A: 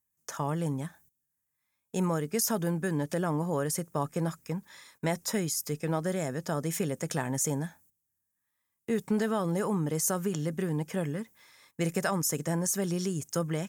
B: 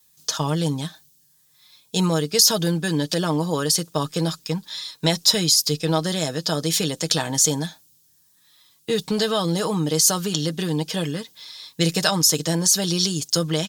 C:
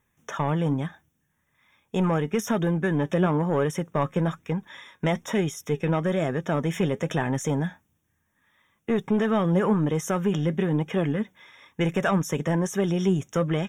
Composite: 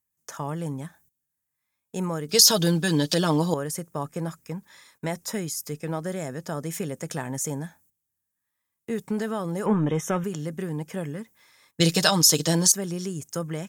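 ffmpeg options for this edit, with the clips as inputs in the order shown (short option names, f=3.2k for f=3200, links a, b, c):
-filter_complex "[1:a]asplit=2[a][b];[0:a]asplit=4[c][d][e][f];[c]atrim=end=2.292[g];[a]atrim=start=2.288:end=3.542[h];[d]atrim=start=3.538:end=9.662[i];[2:a]atrim=start=9.658:end=10.242[j];[e]atrim=start=10.238:end=11.802[k];[b]atrim=start=11.798:end=12.722[l];[f]atrim=start=12.718[m];[g][h]acrossfade=d=0.004:c1=hsin:c2=hsin[n];[n][i]acrossfade=d=0.004:c1=hsin:c2=hsin[o];[o][j]acrossfade=d=0.004:c1=hsin:c2=hsin[p];[p][k]acrossfade=d=0.004:c1=hsin:c2=hsin[q];[q][l]acrossfade=d=0.004:c1=hsin:c2=hsin[r];[r][m]acrossfade=d=0.004:c1=hsin:c2=hsin"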